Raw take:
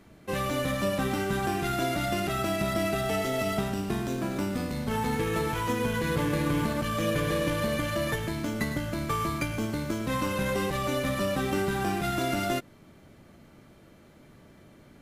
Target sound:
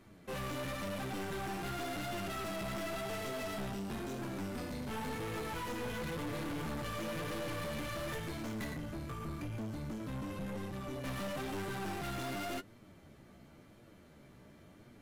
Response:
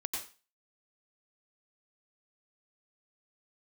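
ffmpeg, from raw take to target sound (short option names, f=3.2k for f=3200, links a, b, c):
-filter_complex "[0:a]asettb=1/sr,asplit=3[a][b][c];[a]atrim=end=8.724[d];[b]atrim=start=8.72:end=11.04,asetpts=PTS-STARTPTS,afade=t=in:d=0.004:c=qsin,afade=t=out:st=2.316:d=0.004:c=qsin,acrossover=split=350[e][f];[f]acompressor=threshold=-43dB:ratio=3[g];[e][g]amix=inputs=2:normalize=0[h];[c]atrim=start=11.036[i];[d][h]acrossfade=d=0.004:c1=hsin:c2=qsin[j];[j][i]acrossfade=d=0.004:c1=qsin:c2=hsin,flanger=delay=8.1:depth=8.5:regen=27:speed=0.94:shape=triangular,aeval=exprs='(tanh(70.8*val(0)+0.3)-tanh(0.3))/70.8':c=same"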